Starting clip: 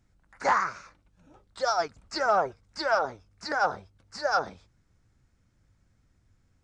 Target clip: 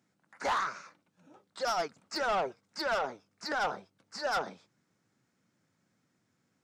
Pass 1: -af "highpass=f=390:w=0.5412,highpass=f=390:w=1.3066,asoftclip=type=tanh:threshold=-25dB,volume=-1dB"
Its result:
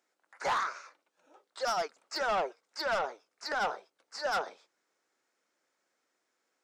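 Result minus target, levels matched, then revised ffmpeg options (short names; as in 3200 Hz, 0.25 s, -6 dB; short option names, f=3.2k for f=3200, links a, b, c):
125 Hz band -3.5 dB
-af "highpass=f=160:w=0.5412,highpass=f=160:w=1.3066,asoftclip=type=tanh:threshold=-25dB,volume=-1dB"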